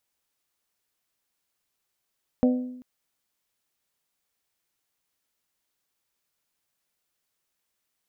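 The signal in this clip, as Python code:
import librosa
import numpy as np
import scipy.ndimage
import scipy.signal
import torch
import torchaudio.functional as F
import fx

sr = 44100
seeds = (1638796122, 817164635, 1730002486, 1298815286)

y = fx.strike_glass(sr, length_s=0.39, level_db=-15.5, body='bell', hz=251.0, decay_s=0.84, tilt_db=6.0, modes=4)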